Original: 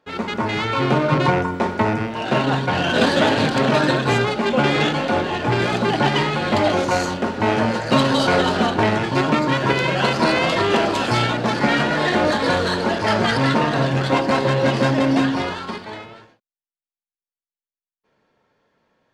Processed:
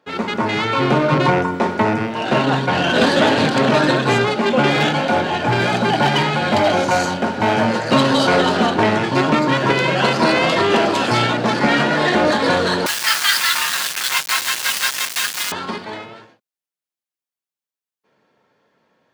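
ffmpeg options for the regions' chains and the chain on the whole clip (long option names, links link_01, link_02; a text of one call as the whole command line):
ffmpeg -i in.wav -filter_complex "[0:a]asettb=1/sr,asplit=3[link_01][link_02][link_03];[link_01]atrim=end=4.704[link_04];[link_02]atrim=start=4.7:end=7.67,asetpts=PTS-STARTPTS,afade=type=in:duration=0.004:curve=qsin,afade=type=out:start_time=2.966:duration=0.004:curve=qsin,aecho=1:1:1.3:0.3,atrim=end_sample=130977,volume=12dB,asoftclip=hard,volume=-12dB[link_05];[link_03]atrim=start=7.666[link_06];[link_04][link_05]acrossfade=duration=0.004:curve1=hsin:curve2=qsin[link_07];[link_07][link_06]acrossfade=duration=0.004:curve1=qsin:curve2=hsin,asettb=1/sr,asplit=3[link_08][link_09][link_10];[link_08]atrim=end=12.864[link_11];[link_09]atrim=start=12.86:end=15.52,asetpts=PTS-STARTPTS,afade=type=in:duration=0.004:curve=qsin,afade=type=out:start_time=2.656:duration=0.004:curve=qsin,highpass=frequency=1200:width=0.5412,highpass=frequency=1200:width=1.3066,aeval=exprs='val(0)*gte(abs(val(0)),0.0422)':channel_layout=same,highshelf=frequency=2800:gain=11.5[link_12];[link_10]atrim=start=15.516[link_13];[link_11][link_12]acrossfade=duration=0.004:curve1=hsin:curve2=qsin[link_14];[link_14][link_13]acrossfade=duration=0.004:curve1=qsin:curve2=hsin,highpass=120,acontrast=47,volume=-2.5dB" out.wav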